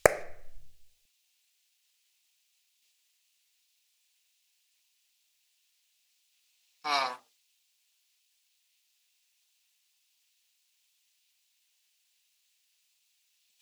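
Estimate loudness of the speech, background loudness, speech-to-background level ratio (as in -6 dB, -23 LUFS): -32.5 LUFS, -30.0 LUFS, -2.5 dB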